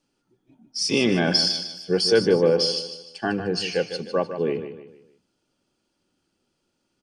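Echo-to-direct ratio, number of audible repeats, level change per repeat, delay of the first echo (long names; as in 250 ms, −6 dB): −9.5 dB, 3, −8.5 dB, 152 ms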